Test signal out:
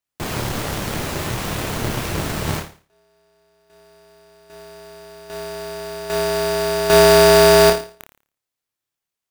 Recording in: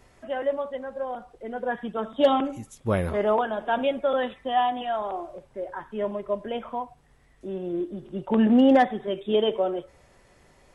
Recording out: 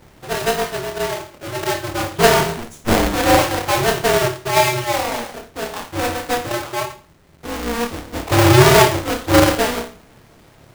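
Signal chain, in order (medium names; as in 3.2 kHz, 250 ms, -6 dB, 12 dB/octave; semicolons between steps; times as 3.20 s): square wave that keeps the level; flutter echo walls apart 4.8 m, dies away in 0.39 s; polarity switched at an audio rate 120 Hz; trim +2 dB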